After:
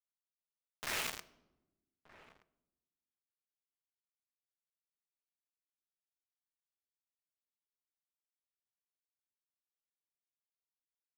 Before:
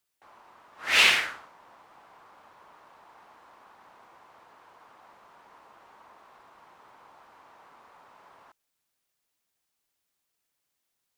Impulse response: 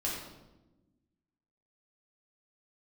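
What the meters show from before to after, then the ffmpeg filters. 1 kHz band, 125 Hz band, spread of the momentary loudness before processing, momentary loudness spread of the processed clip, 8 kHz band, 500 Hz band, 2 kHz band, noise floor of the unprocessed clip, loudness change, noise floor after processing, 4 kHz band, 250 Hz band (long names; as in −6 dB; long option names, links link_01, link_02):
−14.5 dB, −6.0 dB, 18 LU, 10 LU, −10.5 dB, −11.5 dB, −20.0 dB, −81 dBFS, −17.5 dB, below −85 dBFS, −19.5 dB, −9.5 dB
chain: -filter_complex "[0:a]acrossover=split=540|1400[link_01][link_02][link_03];[link_01]acompressor=threshold=-58dB:ratio=4[link_04];[link_02]acompressor=threshold=-47dB:ratio=4[link_05];[link_03]acompressor=threshold=-48dB:ratio=4[link_06];[link_04][link_05][link_06]amix=inputs=3:normalize=0,acrusher=bits=5:mix=0:aa=0.000001,asplit=2[link_07][link_08];[link_08]adelay=1224,volume=-17dB,highshelf=frequency=4000:gain=-27.6[link_09];[link_07][link_09]amix=inputs=2:normalize=0,asplit=2[link_10][link_11];[1:a]atrim=start_sample=2205,asetrate=48510,aresample=44100[link_12];[link_11][link_12]afir=irnorm=-1:irlink=0,volume=-18dB[link_13];[link_10][link_13]amix=inputs=2:normalize=0,volume=1dB"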